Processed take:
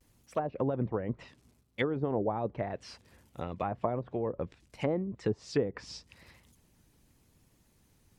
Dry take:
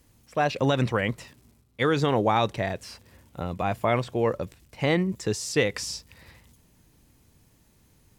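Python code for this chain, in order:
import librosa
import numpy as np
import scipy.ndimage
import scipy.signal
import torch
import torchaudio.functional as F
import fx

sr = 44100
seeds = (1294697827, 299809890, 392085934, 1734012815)

y = fx.vibrato(x, sr, rate_hz=0.84, depth_cents=57.0)
y = fx.env_lowpass_down(y, sr, base_hz=600.0, full_db=-21.0)
y = fx.hpss(y, sr, part='harmonic', gain_db=-7)
y = y * librosa.db_to_amplitude(-2.5)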